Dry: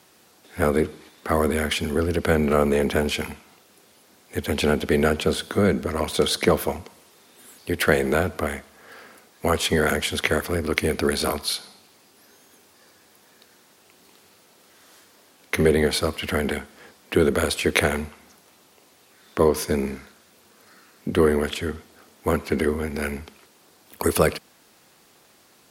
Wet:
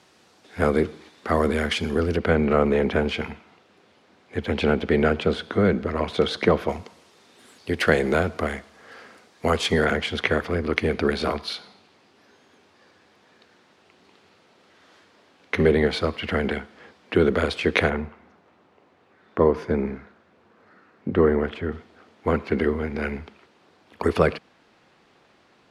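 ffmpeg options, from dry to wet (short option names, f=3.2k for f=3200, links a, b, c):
-af "asetnsamples=n=441:p=0,asendcmd='2.17 lowpass f 3200;6.69 lowpass f 6100;9.85 lowpass f 3600;17.9 lowpass f 1800;21.72 lowpass f 3100',lowpass=6k"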